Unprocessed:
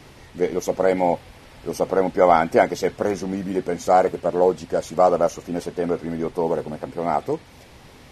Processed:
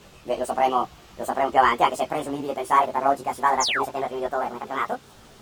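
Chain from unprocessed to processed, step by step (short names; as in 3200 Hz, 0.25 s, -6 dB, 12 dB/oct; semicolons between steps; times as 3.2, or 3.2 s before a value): speed glide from 137% -> 163%; painted sound fall, 3.6–3.84, 700–7600 Hz -21 dBFS; chorus voices 4, 0.44 Hz, delay 17 ms, depth 4.5 ms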